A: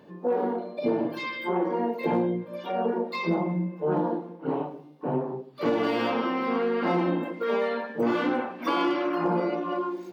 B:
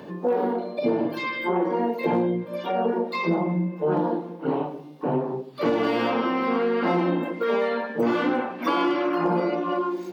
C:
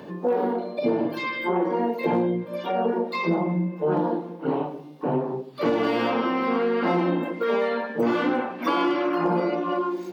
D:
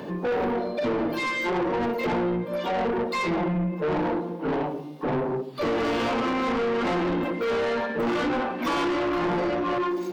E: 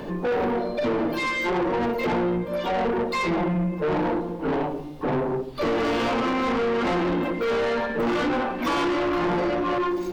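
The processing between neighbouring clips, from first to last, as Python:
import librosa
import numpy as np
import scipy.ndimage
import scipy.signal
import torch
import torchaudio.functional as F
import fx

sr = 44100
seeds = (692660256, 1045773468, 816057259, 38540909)

y1 = fx.band_squash(x, sr, depth_pct=40)
y1 = F.gain(torch.from_numpy(y1), 2.5).numpy()
y2 = y1
y3 = 10.0 ** (-27.5 / 20.0) * np.tanh(y2 / 10.0 ** (-27.5 / 20.0))
y3 = F.gain(torch.from_numpy(y3), 5.0).numpy()
y4 = fx.dmg_noise_colour(y3, sr, seeds[0], colour='brown', level_db=-47.0)
y4 = F.gain(torch.from_numpy(y4), 1.5).numpy()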